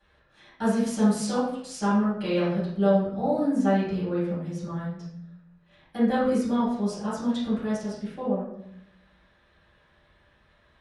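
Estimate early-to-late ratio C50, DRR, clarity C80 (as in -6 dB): 0.5 dB, -12.5 dB, 5.0 dB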